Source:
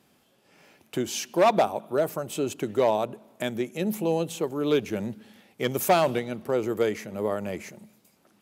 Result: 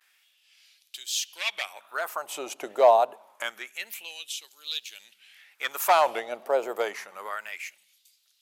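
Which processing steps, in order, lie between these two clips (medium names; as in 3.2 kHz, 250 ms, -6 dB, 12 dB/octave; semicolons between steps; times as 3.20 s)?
vibrato 1.1 Hz 95 cents; LFO high-pass sine 0.27 Hz 660–3900 Hz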